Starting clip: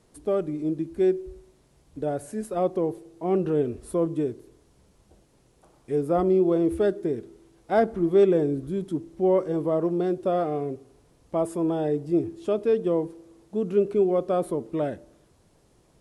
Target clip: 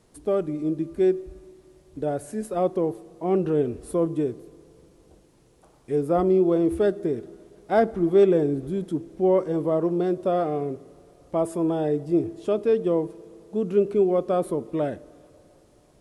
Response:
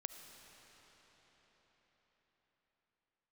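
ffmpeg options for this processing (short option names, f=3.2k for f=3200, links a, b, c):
-filter_complex "[0:a]asplit=2[a][b];[1:a]atrim=start_sample=2205,asetrate=66150,aresample=44100[c];[b][c]afir=irnorm=-1:irlink=0,volume=-8.5dB[d];[a][d]amix=inputs=2:normalize=0"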